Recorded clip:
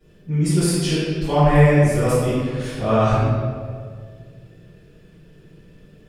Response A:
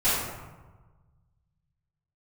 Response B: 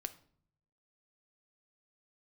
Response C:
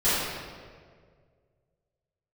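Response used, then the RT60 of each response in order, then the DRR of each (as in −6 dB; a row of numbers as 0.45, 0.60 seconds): C; 1.3, 0.60, 1.9 seconds; −16.5, 9.5, −16.5 decibels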